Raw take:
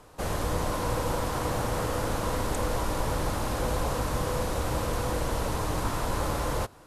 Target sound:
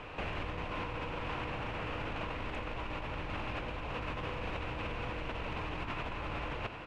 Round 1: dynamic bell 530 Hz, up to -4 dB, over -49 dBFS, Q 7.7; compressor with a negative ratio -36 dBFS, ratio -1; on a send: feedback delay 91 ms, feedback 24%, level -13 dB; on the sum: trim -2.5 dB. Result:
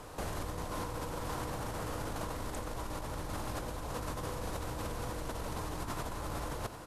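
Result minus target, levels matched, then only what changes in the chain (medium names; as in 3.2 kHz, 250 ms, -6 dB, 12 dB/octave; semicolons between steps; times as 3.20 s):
2 kHz band -5.5 dB
add after dynamic bell: resonant low-pass 2.6 kHz, resonance Q 4.9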